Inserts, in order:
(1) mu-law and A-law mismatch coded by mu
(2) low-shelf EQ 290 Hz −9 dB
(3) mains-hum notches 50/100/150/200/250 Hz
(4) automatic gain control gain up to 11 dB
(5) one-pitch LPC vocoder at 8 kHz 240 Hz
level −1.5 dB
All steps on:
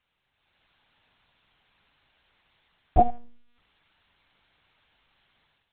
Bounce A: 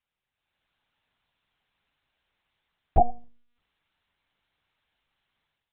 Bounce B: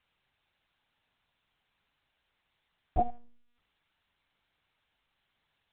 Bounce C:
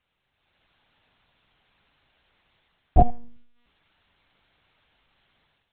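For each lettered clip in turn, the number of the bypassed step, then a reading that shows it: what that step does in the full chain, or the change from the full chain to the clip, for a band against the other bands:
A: 1, distortion level −26 dB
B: 4, change in integrated loudness −9.0 LU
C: 2, 125 Hz band +7.0 dB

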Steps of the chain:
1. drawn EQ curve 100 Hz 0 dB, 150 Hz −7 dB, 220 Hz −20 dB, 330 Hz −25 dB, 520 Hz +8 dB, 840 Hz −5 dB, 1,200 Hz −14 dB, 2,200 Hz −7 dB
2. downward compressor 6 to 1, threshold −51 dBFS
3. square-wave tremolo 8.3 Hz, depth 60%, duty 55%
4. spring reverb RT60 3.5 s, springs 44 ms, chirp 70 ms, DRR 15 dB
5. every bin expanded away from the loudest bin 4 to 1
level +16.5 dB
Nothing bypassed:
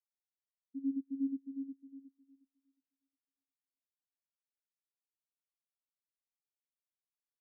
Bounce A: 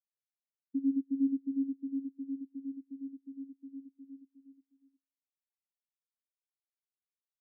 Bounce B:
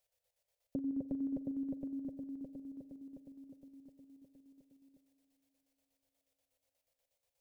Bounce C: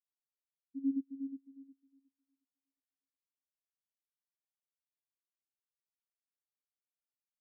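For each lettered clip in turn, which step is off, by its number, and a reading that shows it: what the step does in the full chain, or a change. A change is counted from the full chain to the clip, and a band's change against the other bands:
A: 1, change in crest factor −1.5 dB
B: 5, change in momentary loudness spread +5 LU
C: 2, change in crest factor +3.0 dB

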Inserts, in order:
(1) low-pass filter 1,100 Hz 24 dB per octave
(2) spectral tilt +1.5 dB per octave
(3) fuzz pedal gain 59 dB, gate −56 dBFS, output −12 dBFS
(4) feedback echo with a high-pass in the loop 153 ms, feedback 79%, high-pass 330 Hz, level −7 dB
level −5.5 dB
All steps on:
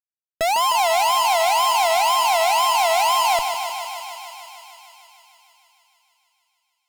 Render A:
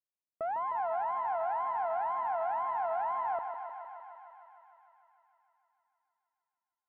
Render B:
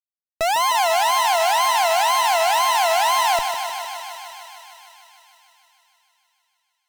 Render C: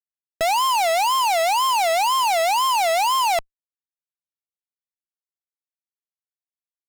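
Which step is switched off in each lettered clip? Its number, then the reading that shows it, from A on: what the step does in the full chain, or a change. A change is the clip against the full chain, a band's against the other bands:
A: 3, distortion level −7 dB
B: 1, 2 kHz band +1.5 dB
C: 4, echo-to-direct ratio −3.5 dB to none audible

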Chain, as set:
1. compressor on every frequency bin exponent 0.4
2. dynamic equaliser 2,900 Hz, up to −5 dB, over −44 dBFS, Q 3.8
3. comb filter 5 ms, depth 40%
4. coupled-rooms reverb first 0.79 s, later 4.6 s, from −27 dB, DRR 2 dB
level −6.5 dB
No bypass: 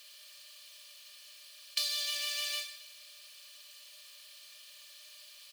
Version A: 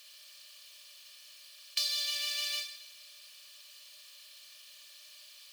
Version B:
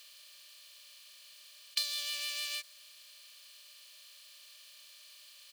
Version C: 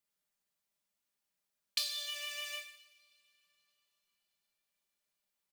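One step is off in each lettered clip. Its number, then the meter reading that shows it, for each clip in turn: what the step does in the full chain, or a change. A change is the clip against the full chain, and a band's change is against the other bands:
3, 4 kHz band +2.5 dB
4, 500 Hz band −4.0 dB
1, 8 kHz band −3.0 dB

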